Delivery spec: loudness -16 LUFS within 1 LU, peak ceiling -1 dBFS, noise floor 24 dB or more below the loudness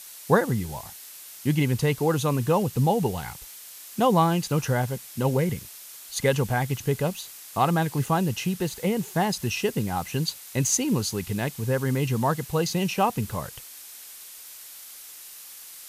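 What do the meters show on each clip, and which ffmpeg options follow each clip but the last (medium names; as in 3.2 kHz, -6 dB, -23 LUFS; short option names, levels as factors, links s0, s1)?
noise floor -44 dBFS; noise floor target -50 dBFS; loudness -25.5 LUFS; peak level -5.5 dBFS; loudness target -16.0 LUFS
-> -af "afftdn=nr=6:nf=-44"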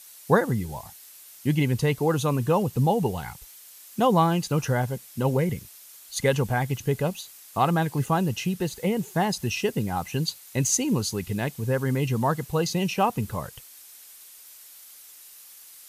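noise floor -48 dBFS; noise floor target -50 dBFS
-> -af "afftdn=nr=6:nf=-48"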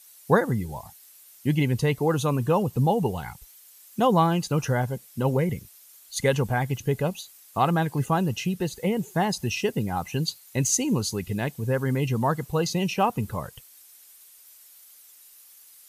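noise floor -52 dBFS; loudness -25.5 LUFS; peak level -5.5 dBFS; loudness target -16.0 LUFS
-> -af "volume=2.99,alimiter=limit=0.891:level=0:latency=1"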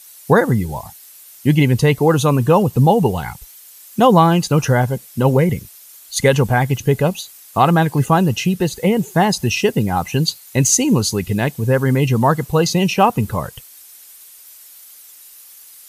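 loudness -16.0 LUFS; peak level -1.0 dBFS; noise floor -43 dBFS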